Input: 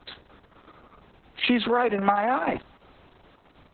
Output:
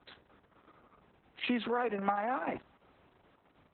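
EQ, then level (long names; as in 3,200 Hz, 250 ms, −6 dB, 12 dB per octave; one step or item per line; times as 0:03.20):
high-pass filter 96 Hz 6 dB per octave
high-frequency loss of the air 470 metres
high-shelf EQ 3,200 Hz +11 dB
−8.5 dB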